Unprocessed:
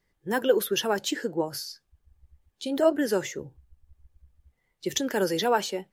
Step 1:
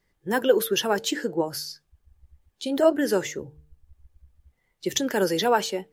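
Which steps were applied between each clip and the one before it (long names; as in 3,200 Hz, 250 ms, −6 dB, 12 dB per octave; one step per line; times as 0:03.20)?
hum removal 150.4 Hz, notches 3
level +2.5 dB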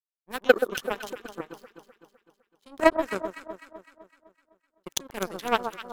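power curve on the samples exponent 3
delay that swaps between a low-pass and a high-pass 127 ms, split 1,300 Hz, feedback 70%, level −8 dB
level +6.5 dB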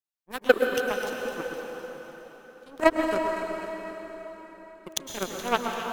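dense smooth reverb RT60 4.4 s, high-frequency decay 0.8×, pre-delay 95 ms, DRR 2.5 dB
level −1 dB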